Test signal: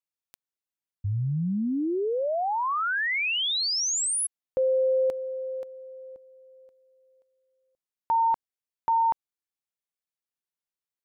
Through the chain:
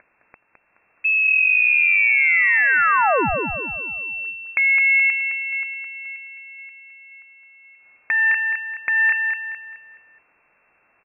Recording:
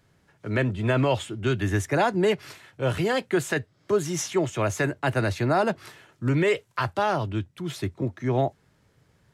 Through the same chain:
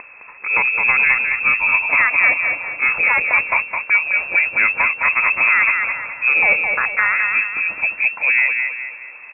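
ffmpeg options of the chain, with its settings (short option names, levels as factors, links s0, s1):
-filter_complex "[0:a]aeval=exprs='if(lt(val(0),0),0.708*val(0),val(0))':c=same,asplit=2[s0][s1];[s1]acompressor=mode=upward:threshold=0.02:ratio=2.5:attack=32:release=123:knee=2.83:detection=peak,volume=0.891[s2];[s0][s2]amix=inputs=2:normalize=0,alimiter=limit=0.282:level=0:latency=1:release=418,aecho=1:1:212|424|636|848|1060:0.562|0.225|0.09|0.036|0.0144,lowpass=f=2300:t=q:w=0.5098,lowpass=f=2300:t=q:w=0.6013,lowpass=f=2300:t=q:w=0.9,lowpass=f=2300:t=q:w=2.563,afreqshift=-2700,volume=1.68"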